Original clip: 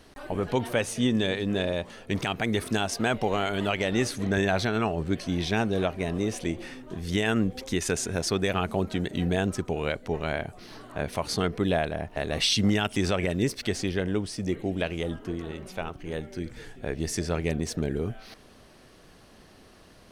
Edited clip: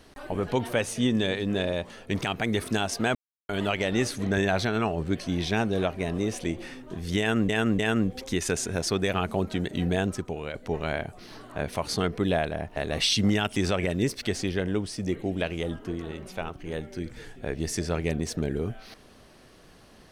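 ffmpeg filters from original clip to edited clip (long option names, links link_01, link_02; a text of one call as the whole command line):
ffmpeg -i in.wav -filter_complex "[0:a]asplit=6[link_01][link_02][link_03][link_04][link_05][link_06];[link_01]atrim=end=3.15,asetpts=PTS-STARTPTS,afade=type=out:start_time=3.146:duration=0.004:curve=hsin[link_07];[link_02]atrim=start=3.15:end=3.49,asetpts=PTS-STARTPTS,volume=0[link_08];[link_03]atrim=start=3.49:end=7.492,asetpts=PTS-STARTPTS,afade=type=in:duration=0.004:curve=hsin[link_09];[link_04]atrim=start=7.188:end=7.492[link_10];[link_05]atrim=start=7.188:end=9.94,asetpts=PTS-STARTPTS,afade=type=out:start_time=2.222:duration=0.53:silence=0.398107[link_11];[link_06]atrim=start=9.94,asetpts=PTS-STARTPTS,afade=type=in:duration=0.004:curve=hsin:silence=0.398107[link_12];[link_07][link_08][link_09]concat=n=3:v=0:a=1[link_13];[link_13][link_10]acrossfade=duration=0.004:curve1=hsin:curve2=hsin[link_14];[link_11][link_12]concat=n=2:v=0:a=1[link_15];[link_14][link_15]acrossfade=duration=0.004:curve1=hsin:curve2=hsin" out.wav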